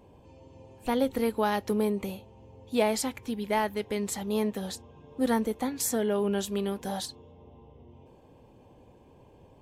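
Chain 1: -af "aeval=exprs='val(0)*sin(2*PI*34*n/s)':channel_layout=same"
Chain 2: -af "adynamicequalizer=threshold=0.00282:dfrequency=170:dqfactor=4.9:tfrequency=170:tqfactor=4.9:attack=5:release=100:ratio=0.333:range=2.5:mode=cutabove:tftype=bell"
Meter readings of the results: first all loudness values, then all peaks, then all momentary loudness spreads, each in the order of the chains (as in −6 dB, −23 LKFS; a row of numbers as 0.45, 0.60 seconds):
−33.0, −30.0 LKFS; −14.0, −13.0 dBFS; 11, 11 LU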